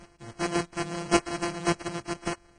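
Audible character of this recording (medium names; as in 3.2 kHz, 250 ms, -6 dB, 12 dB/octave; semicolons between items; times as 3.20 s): a buzz of ramps at a fixed pitch in blocks of 128 samples; chopped level 1.8 Hz, depth 65%, duty 10%; aliases and images of a low sample rate 3.6 kHz, jitter 0%; Vorbis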